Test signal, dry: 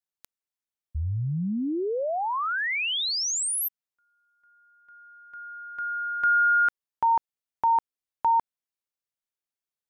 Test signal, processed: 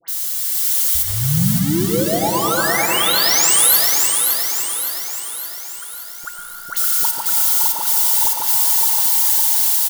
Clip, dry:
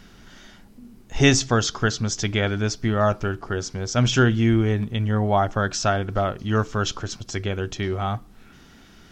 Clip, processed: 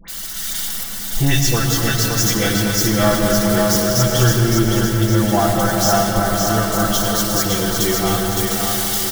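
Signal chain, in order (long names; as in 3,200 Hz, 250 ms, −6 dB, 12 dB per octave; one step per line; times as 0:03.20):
spike at every zero crossing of −15 dBFS
low-shelf EQ 130 Hz +6 dB
notch filter 2,500 Hz, Q 7.5
comb filter 6 ms, depth 91%
automatic gain control gain up to 7.5 dB
all-pass dispersion highs, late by 82 ms, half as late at 1,500 Hz
on a send: echo with a time of its own for lows and highs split 350 Hz, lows 149 ms, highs 564 ms, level −4.5 dB
on the sum: comb and all-pass reverb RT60 4.8 s, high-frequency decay 0.4×, pre-delay 55 ms, DRR 1.5 dB
level −4.5 dB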